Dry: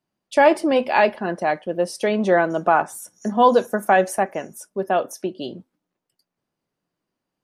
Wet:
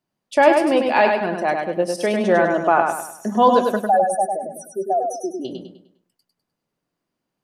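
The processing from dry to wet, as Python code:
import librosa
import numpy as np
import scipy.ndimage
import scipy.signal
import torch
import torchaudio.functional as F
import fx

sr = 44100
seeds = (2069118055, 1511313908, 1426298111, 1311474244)

y = fx.spec_expand(x, sr, power=3.0, at=(3.76, 5.45))
y = fx.echo_feedback(y, sr, ms=101, feedback_pct=39, wet_db=-4.5)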